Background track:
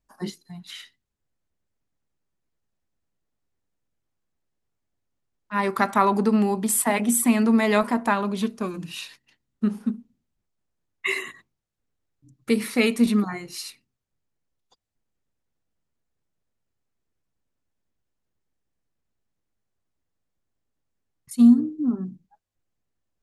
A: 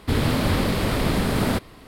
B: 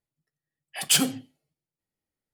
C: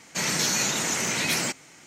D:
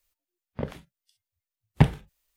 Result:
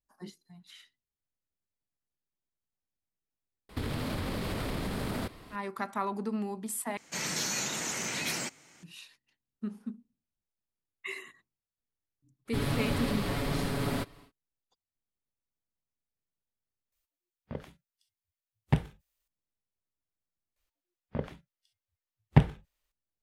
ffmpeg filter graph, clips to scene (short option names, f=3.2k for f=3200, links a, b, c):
-filter_complex "[1:a]asplit=2[a][b];[4:a]asplit=2[c][d];[0:a]volume=-13.5dB[e];[a]acompressor=threshold=-29dB:ratio=12:attack=35:release=44:knee=1:detection=rms[f];[b]aecho=1:1:7.1:0.68[g];[d]aemphasis=mode=reproduction:type=cd[h];[e]asplit=4[i][j][k][l];[i]atrim=end=6.974[m];[3:a]atrim=end=1.86,asetpts=PTS-STARTPTS,volume=-8dB[n];[j]atrim=start=8.826:end=16.924[o];[c]atrim=end=2.36,asetpts=PTS-STARTPTS,volume=-7.5dB[p];[k]atrim=start=19.276:end=20.564[q];[h]atrim=end=2.36,asetpts=PTS-STARTPTS,volume=-2.5dB[r];[l]atrim=start=22.916[s];[f]atrim=end=1.87,asetpts=PTS-STARTPTS,volume=-5dB,afade=t=in:d=0.004:c=hsin,afade=t=out:st=1.866:d=0.004:c=hsin,adelay=162729S[t];[g]atrim=end=1.87,asetpts=PTS-STARTPTS,volume=-11dB,afade=t=in:d=0.1,afade=t=out:st=1.77:d=0.1,adelay=12450[u];[m][n]acrossfade=d=0.004:c1=hsin:c2=hsin[v];[v][o]acrossfade=d=0.004:c1=hsin:c2=hsin[w];[w][p]acrossfade=d=0.004:c1=hsin:c2=hsin[x];[x][q]acrossfade=d=0.004:c1=hsin:c2=hsin[y];[y][r]acrossfade=d=0.004:c1=hsin:c2=hsin[z];[z][s]acrossfade=d=0.004:c1=hsin:c2=hsin[aa];[aa][t][u]amix=inputs=3:normalize=0"